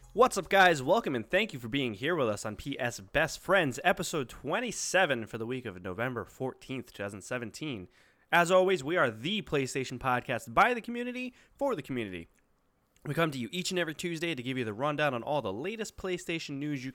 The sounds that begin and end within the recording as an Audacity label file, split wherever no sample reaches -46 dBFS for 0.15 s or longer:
8.320000	11.290000	sound
11.600000	12.240000	sound